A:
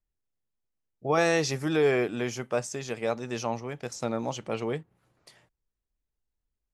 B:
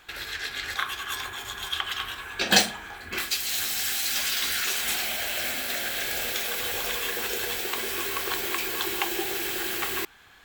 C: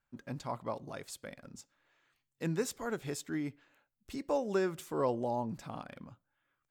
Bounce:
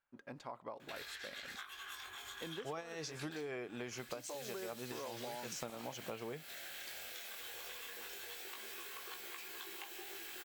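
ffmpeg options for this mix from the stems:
-filter_complex "[0:a]lowshelf=f=360:g=-5,adelay=1600,volume=-1.5dB[a];[1:a]lowshelf=f=310:g=-10,acompressor=threshold=-37dB:ratio=6,flanger=delay=16.5:depth=7.9:speed=0.24,adelay=800,volume=-5.5dB[b];[2:a]bass=f=250:g=-13,treble=f=4k:g=-9,acompressor=threshold=-40dB:ratio=2,volume=-2.5dB,asplit=2[c][d];[d]apad=whole_len=367598[e];[a][e]sidechaincompress=threshold=-50dB:ratio=8:attack=11:release=114[f];[f][b][c]amix=inputs=3:normalize=0,acompressor=threshold=-40dB:ratio=20"

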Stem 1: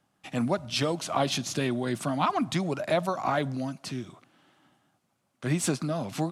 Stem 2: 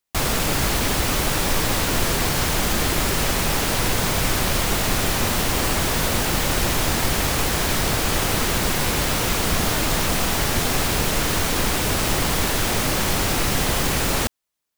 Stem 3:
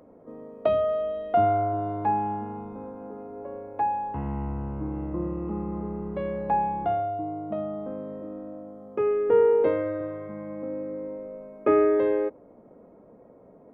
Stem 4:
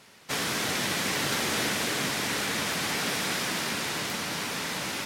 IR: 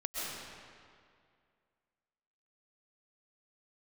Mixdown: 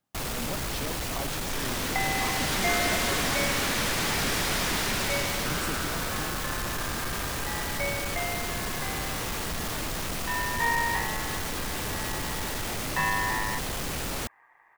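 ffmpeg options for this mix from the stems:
-filter_complex "[0:a]volume=-11.5dB[a];[1:a]asoftclip=type=tanh:threshold=-21.5dB,volume=-6.5dB[b];[2:a]aeval=exprs='val(0)*sin(2*PI*1400*n/s)':c=same,adelay=1300,volume=-5dB[c];[3:a]dynaudnorm=f=180:g=13:m=11.5dB,asoftclip=type=tanh:threshold=-16dB,adelay=1200,volume=-8dB[d];[a][b][c][d]amix=inputs=4:normalize=0"

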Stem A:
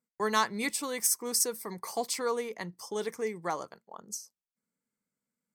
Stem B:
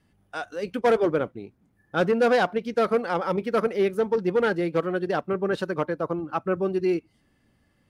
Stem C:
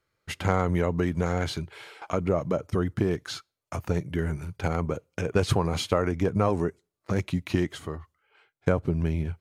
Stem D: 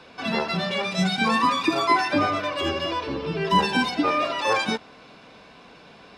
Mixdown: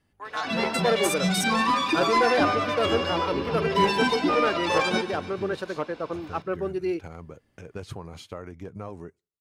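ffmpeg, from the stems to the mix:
-filter_complex "[0:a]highpass=830,afwtdn=0.0126,volume=-4dB[a];[1:a]equalizer=f=180:w=1.5:g=-5.5,volume=-3dB[b];[2:a]adelay=2400,volume=-14dB[c];[3:a]asoftclip=type=tanh:threshold=-14.5dB,adelay=250,volume=-0.5dB,asplit=2[d][e];[e]volume=-13dB,aecho=0:1:143|286|429|572|715|858|1001|1144:1|0.54|0.292|0.157|0.085|0.0459|0.0248|0.0134[f];[a][b][c][d][f]amix=inputs=5:normalize=0"

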